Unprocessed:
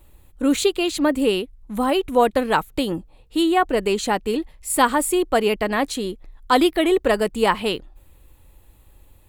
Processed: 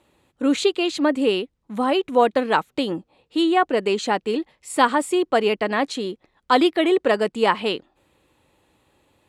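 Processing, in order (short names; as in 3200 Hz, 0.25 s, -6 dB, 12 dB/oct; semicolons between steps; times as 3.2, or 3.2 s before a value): BPF 190–6000 Hz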